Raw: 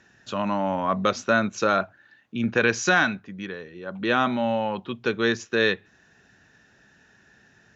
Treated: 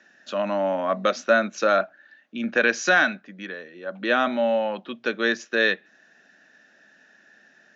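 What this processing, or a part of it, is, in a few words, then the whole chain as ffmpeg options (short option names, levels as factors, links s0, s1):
television speaker: -af "highpass=f=220:w=0.5412,highpass=f=220:w=1.3066,equalizer=f=410:t=q:w=4:g=-6,equalizer=f=600:t=q:w=4:g=7,equalizer=f=970:t=q:w=4:g=-6,equalizer=f=1700:t=q:w=4:g=4,lowpass=f=6700:w=0.5412,lowpass=f=6700:w=1.3066"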